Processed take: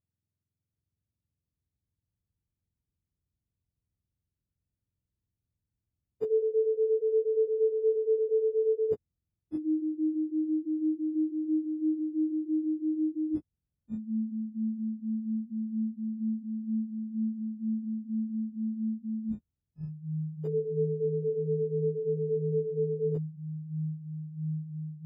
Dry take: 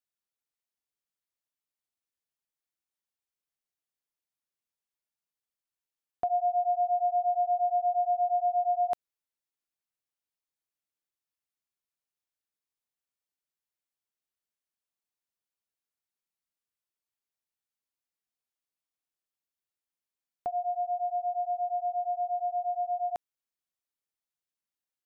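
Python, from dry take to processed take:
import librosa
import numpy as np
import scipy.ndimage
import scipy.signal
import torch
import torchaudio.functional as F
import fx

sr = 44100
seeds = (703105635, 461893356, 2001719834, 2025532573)

y = fx.octave_mirror(x, sr, pivot_hz=560.0)
y = fx.tilt_shelf(y, sr, db=5.0, hz=970.0)
y = fx.echo_pitch(y, sr, ms=736, semitones=-6, count=3, db_per_echo=-3.0)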